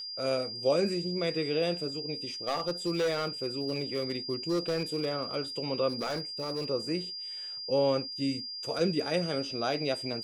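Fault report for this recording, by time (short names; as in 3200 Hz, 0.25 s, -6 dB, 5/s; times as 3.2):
tone 4800 Hz -37 dBFS
2.47–5.16 clipped -25 dBFS
5.88–6.7 clipped -28.5 dBFS
8.79 gap 3.5 ms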